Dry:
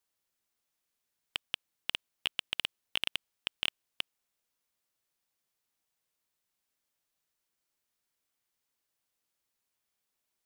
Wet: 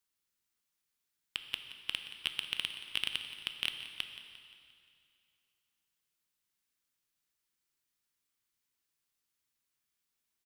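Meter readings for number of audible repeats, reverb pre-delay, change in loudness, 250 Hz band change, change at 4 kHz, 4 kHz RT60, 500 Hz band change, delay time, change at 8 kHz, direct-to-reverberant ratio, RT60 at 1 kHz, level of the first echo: 3, 5 ms, −1.0 dB, −2.0 dB, −1.0 dB, 2.3 s, −6.5 dB, 175 ms, −0.5 dB, 6.0 dB, 2.4 s, −15.0 dB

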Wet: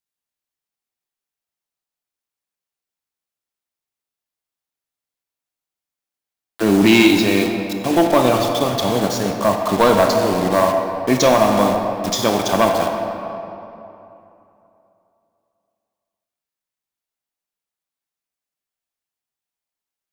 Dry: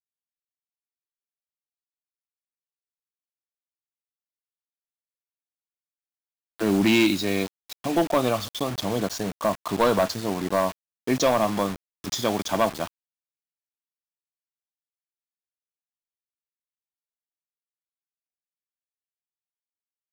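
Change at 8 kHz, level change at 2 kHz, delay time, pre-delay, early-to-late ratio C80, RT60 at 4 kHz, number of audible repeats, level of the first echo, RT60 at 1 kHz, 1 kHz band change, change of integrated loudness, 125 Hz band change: +7.0 dB, +8.0 dB, no echo audible, 20 ms, 4.5 dB, 1.8 s, no echo audible, no echo audible, 2.9 s, +9.0 dB, +8.0 dB, +7.5 dB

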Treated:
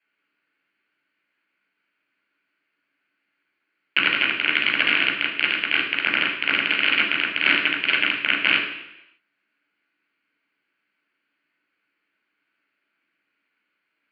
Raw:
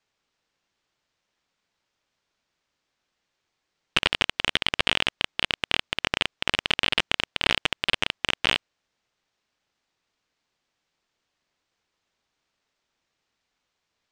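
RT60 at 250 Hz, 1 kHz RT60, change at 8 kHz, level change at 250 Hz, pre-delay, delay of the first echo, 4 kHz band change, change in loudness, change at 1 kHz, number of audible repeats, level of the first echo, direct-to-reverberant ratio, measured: 0.85 s, 0.85 s, below −25 dB, +5.0 dB, 13 ms, no echo audible, +1.5 dB, +5.5 dB, +2.5 dB, no echo audible, no echo audible, −3.0 dB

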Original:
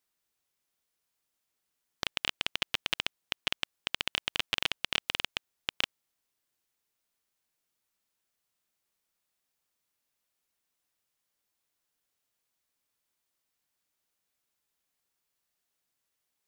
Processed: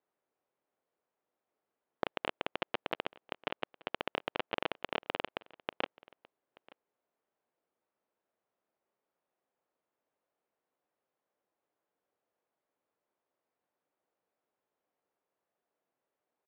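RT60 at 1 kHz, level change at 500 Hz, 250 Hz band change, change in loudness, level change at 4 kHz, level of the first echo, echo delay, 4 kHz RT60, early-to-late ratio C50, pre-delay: no reverb audible, +8.0 dB, +4.0 dB, −6.5 dB, −12.0 dB, −23.0 dB, 881 ms, no reverb audible, no reverb audible, no reverb audible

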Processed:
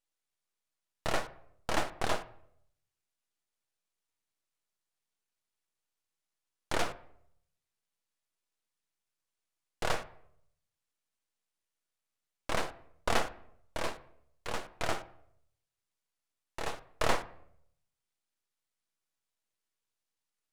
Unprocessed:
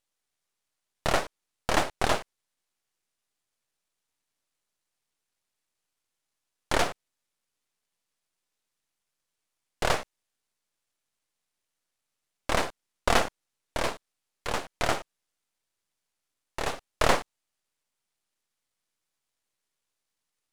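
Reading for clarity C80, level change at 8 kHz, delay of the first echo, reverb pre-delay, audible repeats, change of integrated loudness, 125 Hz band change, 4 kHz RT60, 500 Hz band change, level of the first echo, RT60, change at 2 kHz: 20.0 dB, −7.0 dB, no echo audible, 6 ms, no echo audible, −6.5 dB, −6.5 dB, 0.50 s, −6.5 dB, no echo audible, 0.70 s, −6.5 dB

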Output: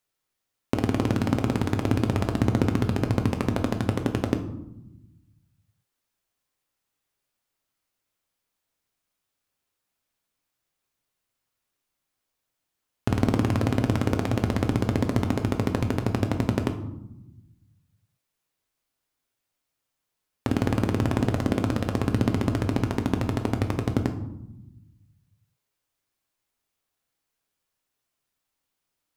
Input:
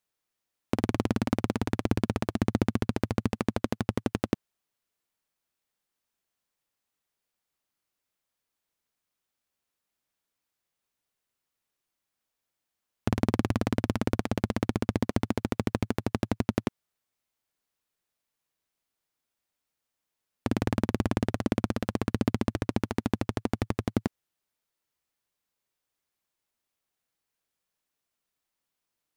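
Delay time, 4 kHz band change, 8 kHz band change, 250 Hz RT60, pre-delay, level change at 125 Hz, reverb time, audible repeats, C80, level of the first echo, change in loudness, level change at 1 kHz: no echo audible, +3.0 dB, +3.0 dB, 1.6 s, 7 ms, +6.5 dB, 0.90 s, no echo audible, 13.5 dB, no echo audible, +4.0 dB, +3.5 dB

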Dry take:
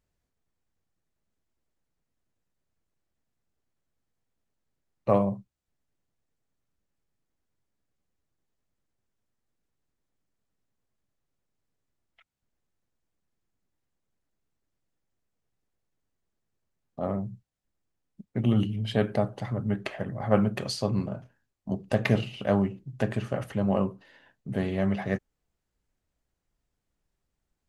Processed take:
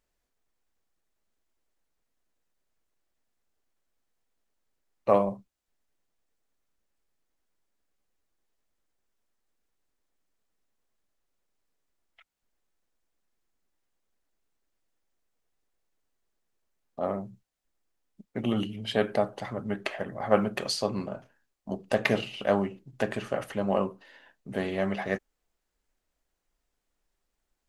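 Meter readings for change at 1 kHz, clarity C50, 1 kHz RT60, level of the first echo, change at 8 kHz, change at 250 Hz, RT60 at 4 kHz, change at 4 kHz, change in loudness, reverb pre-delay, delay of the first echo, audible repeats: +2.5 dB, no reverb audible, no reverb audible, no echo audible, +3.0 dB, −4.0 dB, no reverb audible, +3.0 dB, −1.0 dB, no reverb audible, no echo audible, no echo audible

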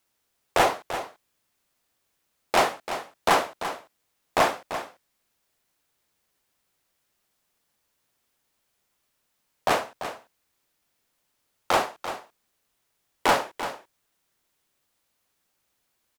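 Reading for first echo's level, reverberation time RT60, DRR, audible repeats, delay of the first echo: −11.0 dB, no reverb audible, no reverb audible, 1, 340 ms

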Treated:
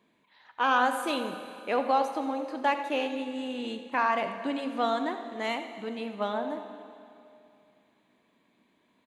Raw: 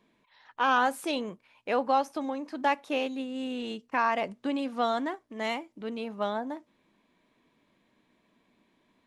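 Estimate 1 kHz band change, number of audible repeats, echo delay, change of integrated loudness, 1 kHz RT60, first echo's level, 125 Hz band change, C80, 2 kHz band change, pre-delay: +0.5 dB, 1, 85 ms, +0.5 dB, 2.6 s, −14.0 dB, can't be measured, 8.5 dB, +1.0 dB, 25 ms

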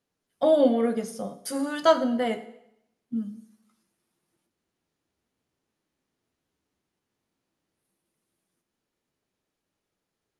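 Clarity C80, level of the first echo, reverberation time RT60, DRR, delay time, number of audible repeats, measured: 16.0 dB, no echo audible, 0.80 s, 10.5 dB, no echo audible, no echo audible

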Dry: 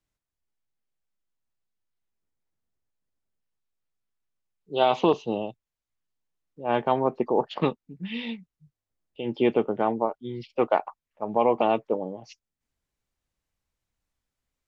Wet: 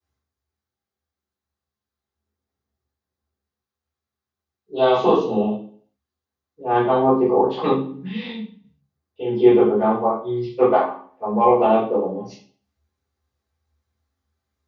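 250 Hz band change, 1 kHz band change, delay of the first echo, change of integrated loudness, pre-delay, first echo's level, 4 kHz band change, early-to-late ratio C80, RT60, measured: +8.0 dB, +6.5 dB, no echo audible, +7.5 dB, 3 ms, no echo audible, +1.5 dB, 8.5 dB, 0.50 s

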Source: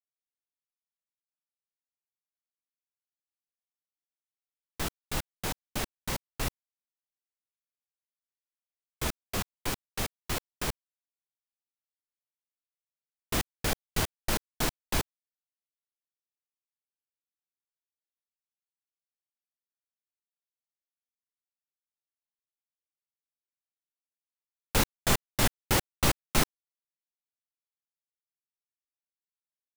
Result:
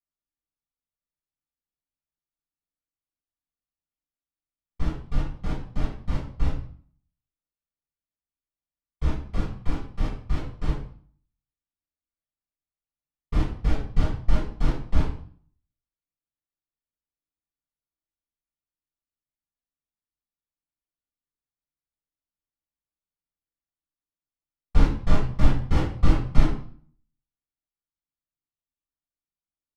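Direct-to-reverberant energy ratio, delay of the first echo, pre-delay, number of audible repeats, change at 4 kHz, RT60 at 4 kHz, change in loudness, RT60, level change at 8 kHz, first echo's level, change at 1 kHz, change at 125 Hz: −10.0 dB, no echo audible, 3 ms, no echo audible, −10.0 dB, 0.45 s, +3.0 dB, 0.50 s, −19.0 dB, no echo audible, −1.5 dB, +9.5 dB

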